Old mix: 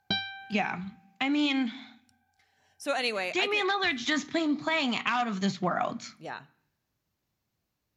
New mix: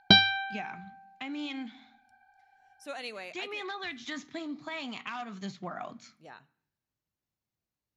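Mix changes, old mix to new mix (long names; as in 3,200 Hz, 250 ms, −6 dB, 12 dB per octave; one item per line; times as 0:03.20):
speech −10.5 dB
background +11.0 dB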